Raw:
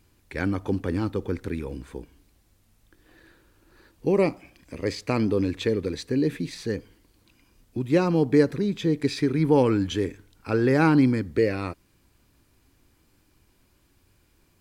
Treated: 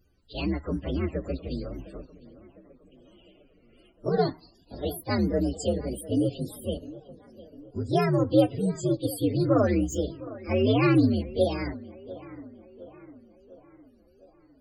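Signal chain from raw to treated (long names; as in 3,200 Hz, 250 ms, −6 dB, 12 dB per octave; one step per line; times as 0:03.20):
partials spread apart or drawn together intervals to 129%
on a send: tape delay 705 ms, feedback 59%, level −16.5 dB, low-pass 2,500 Hz
on the sum: tape wow and flutter 57 cents
spectral peaks only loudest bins 64
high-shelf EQ 4,800 Hz +6.5 dB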